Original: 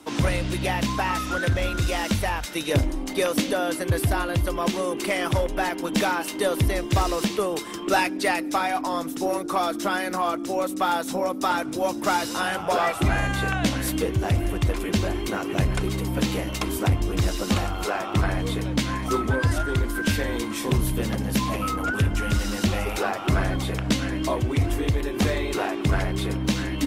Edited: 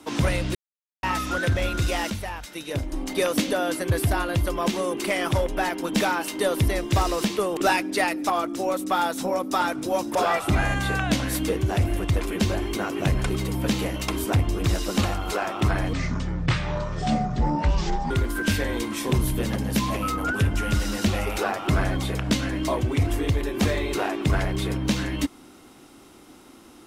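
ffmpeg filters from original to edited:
-filter_complex "[0:a]asplit=10[a][b][c][d][e][f][g][h][i][j];[a]atrim=end=0.55,asetpts=PTS-STARTPTS,afade=t=out:st=0.546:d=0.004:c=hsin[k];[b]atrim=start=0.55:end=1.03,asetpts=PTS-STARTPTS,volume=0[l];[c]atrim=start=1.03:end=2.102,asetpts=PTS-STARTPTS,afade=t=in:d=0.004:c=hsin[m];[d]atrim=start=2.098:end=2.922,asetpts=PTS-STARTPTS,volume=-7dB[n];[e]atrim=start=2.918:end=7.572[o];[f]atrim=start=7.838:end=8.572[p];[g]atrim=start=10.198:end=12.052[q];[h]atrim=start=12.678:end=18.464[r];[i]atrim=start=18.46:end=19.7,asetpts=PTS-STARTPTS,asetrate=25137,aresample=44100[s];[j]atrim=start=19.696[t];[k][l][m]concat=n=3:v=0:a=1[u];[u][n]acrossfade=d=0.004:c1=hsin:c2=hsin[v];[v][o]acrossfade=d=0.004:c1=hsin:c2=hsin[w];[w][p]acrossfade=d=0.004:c1=hsin:c2=hsin[x];[x][q]acrossfade=d=0.004:c1=hsin:c2=hsin[y];[y][r]acrossfade=d=0.004:c1=hsin:c2=hsin[z];[z][s]acrossfade=d=0.004:c1=hsin:c2=hsin[aa];[aa][t]acrossfade=d=0.004:c1=hsin:c2=hsin"

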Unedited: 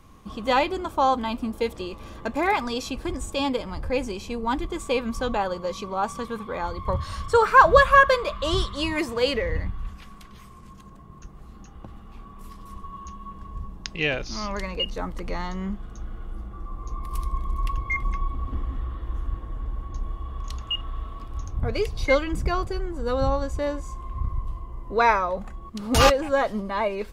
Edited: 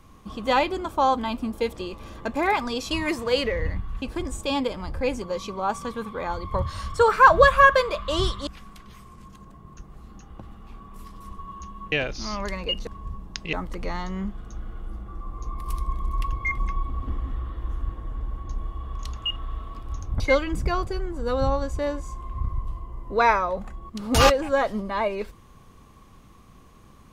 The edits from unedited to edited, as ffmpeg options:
-filter_complex "[0:a]asplit=9[a][b][c][d][e][f][g][h][i];[a]atrim=end=2.912[j];[b]atrim=start=8.808:end=9.922[k];[c]atrim=start=2.908:end=4.112[l];[d]atrim=start=5.558:end=8.812[m];[e]atrim=start=9.918:end=13.372[n];[f]atrim=start=14.028:end=14.982[o];[g]atrim=start=13.368:end=14.032[p];[h]atrim=start=14.978:end=21.652[q];[i]atrim=start=21.998[r];[j][k]acrossfade=d=0.004:c1=hsin:c2=hsin[s];[s][l]acrossfade=d=0.004:c1=hsin:c2=hsin[t];[t][m]acrossfade=d=0.004:c1=hsin:c2=hsin[u];[u][n]acrossfade=d=0.004:c1=hsin:c2=hsin[v];[v][o]acrossfade=d=0.004:c1=hsin:c2=hsin[w];[w][p]acrossfade=d=0.004:c1=hsin:c2=hsin[x];[x][q]acrossfade=d=0.004:c1=hsin:c2=hsin[y];[y][r]acrossfade=d=0.004:c1=hsin:c2=hsin"

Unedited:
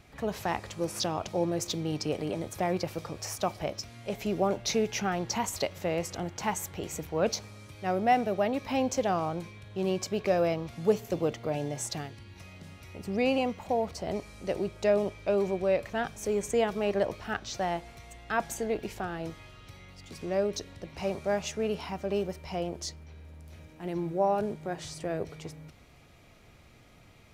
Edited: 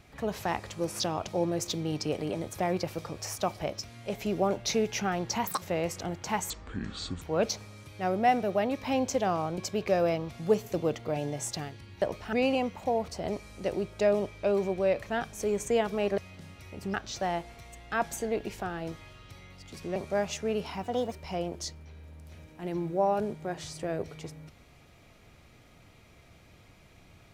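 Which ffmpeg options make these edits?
-filter_complex "[0:a]asplit=13[a][b][c][d][e][f][g][h][i][j][k][l][m];[a]atrim=end=5.474[n];[b]atrim=start=5.47:end=5.76,asetpts=PTS-STARTPTS,asetrate=85995,aresample=44100,atrim=end_sample=6558,asetpts=PTS-STARTPTS[o];[c]atrim=start=5.756:end=6.644[p];[d]atrim=start=6.64:end=7.05,asetpts=PTS-STARTPTS,asetrate=25137,aresample=44100,atrim=end_sample=31721,asetpts=PTS-STARTPTS[q];[e]atrim=start=7.046:end=9.412[r];[f]atrim=start=9.958:end=12.402[s];[g]atrim=start=17.008:end=17.322[t];[h]atrim=start=13.158:end=17.012[u];[i]atrim=start=12.398:end=13.162[v];[j]atrim=start=17.318:end=20.342[w];[k]atrim=start=21.098:end=21.974[x];[l]atrim=start=21.97:end=22.33,asetpts=PTS-STARTPTS,asetrate=54243,aresample=44100,atrim=end_sample=12907,asetpts=PTS-STARTPTS[y];[m]atrim=start=22.326[z];[n][o]acrossfade=d=0.004:c1=hsin:c2=hsin[aa];[aa][p]acrossfade=d=0.004:c1=hsin:c2=hsin[ab];[ab][q]acrossfade=d=0.004:c1=hsin:c2=hsin[ac];[ac][r]acrossfade=d=0.004:c1=hsin:c2=hsin[ad];[ad][s]acrossfade=d=0.004:c1=hsin:c2=hsin[ae];[ae][t]acrossfade=d=0.004:c1=hsin:c2=hsin[af];[af][u]acrossfade=d=0.004:c1=hsin:c2=hsin[ag];[ag][v]acrossfade=d=0.004:c1=hsin:c2=hsin[ah];[ah][w]acrossfade=d=0.004:c1=hsin:c2=hsin[ai];[ai][x]acrossfade=d=0.004:c1=hsin:c2=hsin[aj];[aj][y]acrossfade=d=0.004:c1=hsin:c2=hsin[ak];[ak][z]acrossfade=d=0.004:c1=hsin:c2=hsin"

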